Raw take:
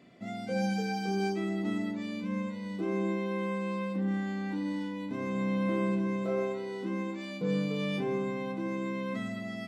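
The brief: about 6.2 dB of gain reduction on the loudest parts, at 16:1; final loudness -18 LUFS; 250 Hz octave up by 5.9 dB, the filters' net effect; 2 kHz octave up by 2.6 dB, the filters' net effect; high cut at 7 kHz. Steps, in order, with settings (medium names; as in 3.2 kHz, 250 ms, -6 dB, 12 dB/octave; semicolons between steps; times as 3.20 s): low-pass 7 kHz; peaking EQ 250 Hz +8.5 dB; peaking EQ 2 kHz +3 dB; compression 16:1, threshold -27 dBFS; trim +14 dB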